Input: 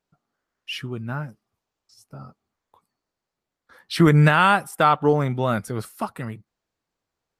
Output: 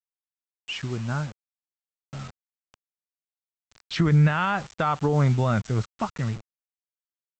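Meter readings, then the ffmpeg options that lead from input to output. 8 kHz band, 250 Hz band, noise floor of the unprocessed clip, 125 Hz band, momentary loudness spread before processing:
n/a, -3.5 dB, -85 dBFS, 0.0 dB, 18 LU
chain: -af "equalizer=f=4.7k:w=1.6:g=-5,aresample=16000,acrusher=bits=6:mix=0:aa=0.000001,aresample=44100,alimiter=limit=-14dB:level=0:latency=1:release=69,asubboost=boost=2.5:cutoff=180"

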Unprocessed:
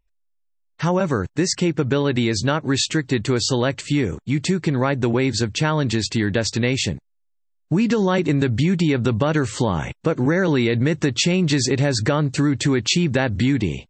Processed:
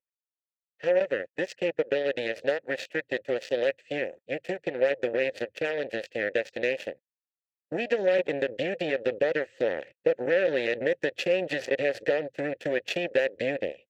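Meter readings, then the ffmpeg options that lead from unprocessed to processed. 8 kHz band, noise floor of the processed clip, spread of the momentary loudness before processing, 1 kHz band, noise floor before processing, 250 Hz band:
under -20 dB, under -85 dBFS, 4 LU, -12.5 dB, -68 dBFS, -17.0 dB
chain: -filter_complex "[0:a]aeval=exprs='0.531*(cos(1*acos(clip(val(0)/0.531,-1,1)))-cos(1*PI/2))+0.0944*(cos(7*acos(clip(val(0)/0.531,-1,1)))-cos(7*PI/2))':c=same,asplit=3[a][b][c];[a]bandpass=f=530:t=q:w=8,volume=0dB[d];[b]bandpass=f=1.84k:t=q:w=8,volume=-6dB[e];[c]bandpass=f=2.48k:t=q:w=8,volume=-9dB[f];[d][e][f]amix=inputs=3:normalize=0,volume=5.5dB"

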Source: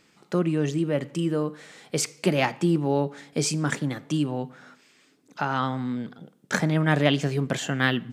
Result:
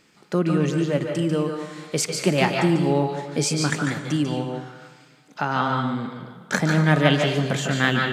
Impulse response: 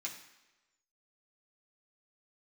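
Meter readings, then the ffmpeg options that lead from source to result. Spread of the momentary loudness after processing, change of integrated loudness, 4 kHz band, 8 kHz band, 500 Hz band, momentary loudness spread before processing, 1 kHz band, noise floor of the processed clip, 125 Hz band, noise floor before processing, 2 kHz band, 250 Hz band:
11 LU, +3.5 dB, +4.5 dB, +3.0 dB, +3.5 dB, 9 LU, +4.5 dB, -54 dBFS, +3.5 dB, -62 dBFS, +4.0 dB, +3.0 dB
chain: -filter_complex "[0:a]asplit=2[a][b];[1:a]atrim=start_sample=2205,asetrate=26901,aresample=44100,adelay=144[c];[b][c]afir=irnorm=-1:irlink=0,volume=-5dB[d];[a][d]amix=inputs=2:normalize=0,volume=2dB"

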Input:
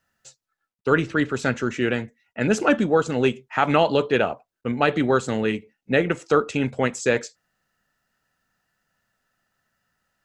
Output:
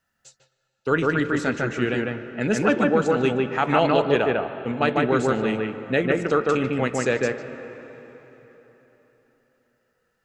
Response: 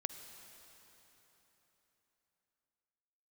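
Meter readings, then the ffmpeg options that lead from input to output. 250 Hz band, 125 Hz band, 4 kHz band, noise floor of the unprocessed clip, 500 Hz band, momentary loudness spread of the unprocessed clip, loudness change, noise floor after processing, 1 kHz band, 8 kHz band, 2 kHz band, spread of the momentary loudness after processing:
+0.5 dB, 0.0 dB, -1.5 dB, -83 dBFS, +0.5 dB, 8 LU, 0.0 dB, -74 dBFS, 0.0 dB, -2.5 dB, 0.0 dB, 10 LU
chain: -filter_complex "[0:a]asplit=2[a][b];[1:a]atrim=start_sample=2205,lowpass=2.6k,adelay=150[c];[b][c]afir=irnorm=-1:irlink=0,volume=0dB[d];[a][d]amix=inputs=2:normalize=0,volume=-2.5dB"

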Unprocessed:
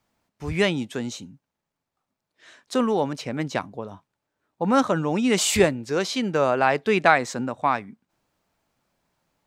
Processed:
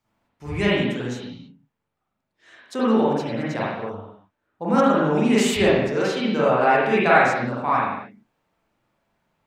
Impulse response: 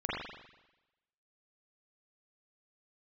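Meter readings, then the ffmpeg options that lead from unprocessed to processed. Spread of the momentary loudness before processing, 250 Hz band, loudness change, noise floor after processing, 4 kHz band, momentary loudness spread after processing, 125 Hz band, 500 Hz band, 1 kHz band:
12 LU, +3.5 dB, +2.5 dB, -79 dBFS, -0.5 dB, 16 LU, +2.5 dB, +3.0 dB, +3.0 dB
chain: -filter_complex "[1:a]atrim=start_sample=2205,afade=t=out:st=0.37:d=0.01,atrim=end_sample=16758[a];[0:a][a]afir=irnorm=-1:irlink=0,volume=-4.5dB"

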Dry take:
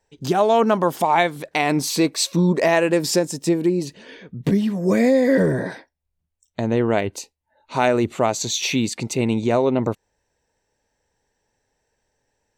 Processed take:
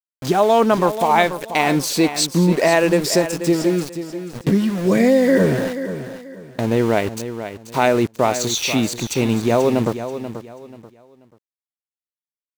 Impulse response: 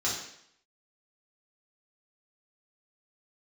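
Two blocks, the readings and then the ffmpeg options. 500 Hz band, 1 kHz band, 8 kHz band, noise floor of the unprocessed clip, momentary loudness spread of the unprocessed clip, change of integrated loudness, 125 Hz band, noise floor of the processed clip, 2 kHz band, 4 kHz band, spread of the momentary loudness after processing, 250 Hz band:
+2.5 dB, +2.5 dB, +2.0 dB, -75 dBFS, 11 LU, +2.0 dB, +2.0 dB, under -85 dBFS, +2.5 dB, +2.5 dB, 14 LU, +2.0 dB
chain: -filter_complex "[0:a]aeval=exprs='val(0)*gte(abs(val(0)),0.0355)':c=same,asplit=2[a][b];[b]aecho=0:1:485|970|1455:0.282|0.0789|0.0221[c];[a][c]amix=inputs=2:normalize=0,volume=2dB"

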